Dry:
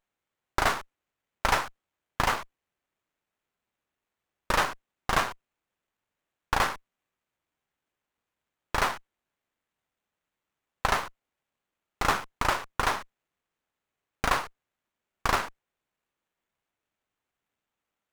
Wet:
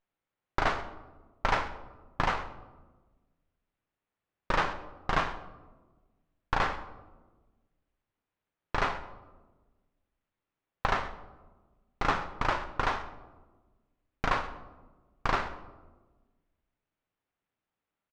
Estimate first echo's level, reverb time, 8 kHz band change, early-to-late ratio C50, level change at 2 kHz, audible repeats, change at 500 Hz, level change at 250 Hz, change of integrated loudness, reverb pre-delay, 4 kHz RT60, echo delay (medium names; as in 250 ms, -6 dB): -19.5 dB, 1.3 s, -14.0 dB, 12.5 dB, -3.5 dB, 1, -1.5 dB, -0.5 dB, -3.5 dB, 6 ms, 0.60 s, 130 ms